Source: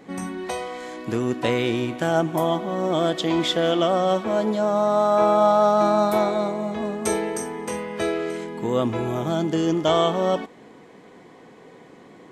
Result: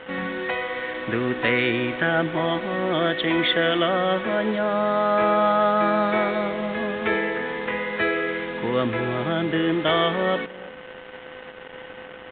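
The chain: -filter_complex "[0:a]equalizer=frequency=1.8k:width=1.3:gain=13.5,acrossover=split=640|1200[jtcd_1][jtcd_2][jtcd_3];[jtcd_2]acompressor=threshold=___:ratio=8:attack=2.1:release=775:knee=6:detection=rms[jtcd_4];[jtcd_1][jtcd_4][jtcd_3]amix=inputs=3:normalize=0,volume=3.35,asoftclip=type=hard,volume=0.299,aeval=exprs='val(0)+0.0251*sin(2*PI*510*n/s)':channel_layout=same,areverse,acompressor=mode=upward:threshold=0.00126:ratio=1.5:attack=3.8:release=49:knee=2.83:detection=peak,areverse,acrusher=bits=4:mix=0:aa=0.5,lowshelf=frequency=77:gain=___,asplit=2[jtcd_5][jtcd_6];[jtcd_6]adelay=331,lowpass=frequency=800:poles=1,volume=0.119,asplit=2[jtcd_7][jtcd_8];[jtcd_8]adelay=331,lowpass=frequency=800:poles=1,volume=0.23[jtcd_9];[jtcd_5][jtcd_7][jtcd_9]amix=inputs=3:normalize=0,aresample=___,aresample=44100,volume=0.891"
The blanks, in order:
0.0282, -3, 8000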